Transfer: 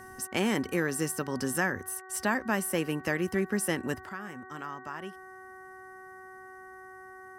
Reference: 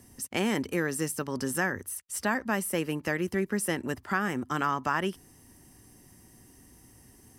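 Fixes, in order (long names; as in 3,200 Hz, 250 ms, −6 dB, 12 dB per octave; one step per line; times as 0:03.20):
hum removal 375.9 Hz, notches 5
level 0 dB, from 0:04.09 +12 dB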